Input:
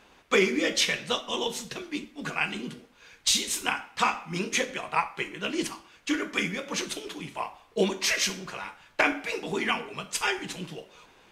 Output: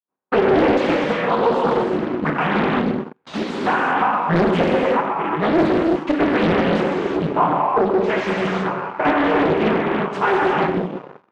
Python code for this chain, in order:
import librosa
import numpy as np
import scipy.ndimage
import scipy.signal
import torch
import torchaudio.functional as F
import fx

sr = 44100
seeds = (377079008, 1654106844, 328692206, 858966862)

y = fx.fade_in_head(x, sr, length_s=0.67)
y = fx.step_gate(y, sr, bpm=189, pattern='.x..x.xxxxxx', floor_db=-12.0, edge_ms=4.5)
y = y + 10.0 ** (-15.5 / 20.0) * np.pad(y, (int(133 * sr / 1000.0), 0))[:len(y)]
y = fx.rev_gated(y, sr, seeds[0], gate_ms=390, shape='flat', drr_db=-1.0)
y = fx.leveller(y, sr, passes=5)
y = scipy.signal.sosfilt(scipy.signal.cheby1(2, 1.0, [160.0, 1100.0], 'bandpass', fs=sr, output='sos'), y)
y = fx.doppler_dist(y, sr, depth_ms=0.87)